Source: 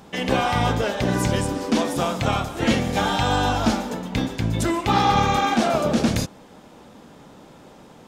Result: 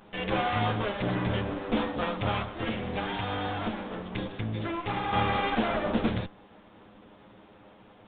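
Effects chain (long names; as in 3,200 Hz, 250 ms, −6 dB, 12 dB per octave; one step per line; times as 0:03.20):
lower of the sound and its delayed copy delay 9.7 ms
0:02.56–0:05.13: downward compressor 4 to 1, threshold −23 dBFS, peak gain reduction 7 dB
downsampling to 8,000 Hz
level −5.5 dB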